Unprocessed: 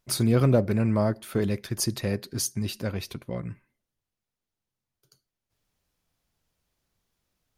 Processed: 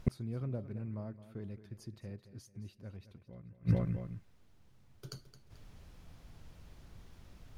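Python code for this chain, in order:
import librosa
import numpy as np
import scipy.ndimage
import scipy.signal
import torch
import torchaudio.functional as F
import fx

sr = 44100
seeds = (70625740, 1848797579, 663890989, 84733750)

y = fx.low_shelf(x, sr, hz=190.0, db=10.5)
y = fx.echo_feedback(y, sr, ms=218, feedback_pct=34, wet_db=-14)
y = fx.gate_flip(y, sr, shuts_db=-32.0, range_db=-41)
y = fx.lowpass(y, sr, hz=3000.0, slope=6)
y = F.gain(torch.from_numpy(y), 17.5).numpy()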